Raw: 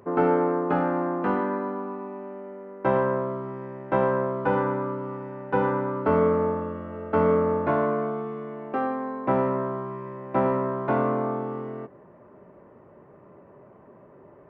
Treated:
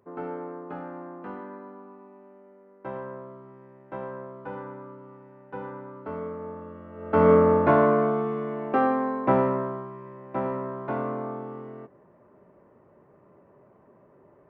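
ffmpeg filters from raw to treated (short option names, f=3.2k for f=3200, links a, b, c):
-af "volume=4.5dB,afade=t=in:st=6.39:d=0.56:silence=0.473151,afade=t=in:st=6.95:d=0.37:silence=0.266073,afade=t=out:st=8.99:d=0.92:silence=0.298538"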